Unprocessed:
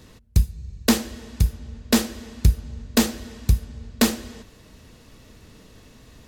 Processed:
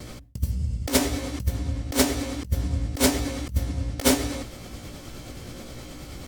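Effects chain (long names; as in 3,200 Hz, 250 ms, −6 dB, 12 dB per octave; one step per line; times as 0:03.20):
pitch shift by two crossfaded delay taps +3 semitones
noise gate with hold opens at −43 dBFS
compressor whose output falls as the input rises −25 dBFS, ratio −0.5
level +4.5 dB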